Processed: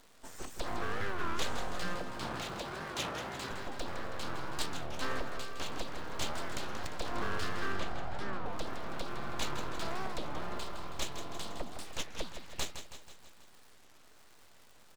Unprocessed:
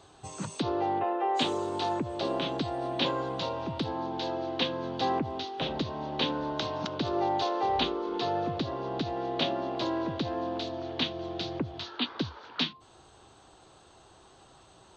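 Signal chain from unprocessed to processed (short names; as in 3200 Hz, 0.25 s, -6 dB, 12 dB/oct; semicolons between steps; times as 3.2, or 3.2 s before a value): full-wave rectifier; 1.95–3.51 HPF 64 Hz; crackle 210/s -44 dBFS; 7.72–8.48 LPF 1600 Hz 6 dB/oct; feedback echo 0.162 s, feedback 56%, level -9 dB; record warp 33 1/3 rpm, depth 250 cents; gain -4.5 dB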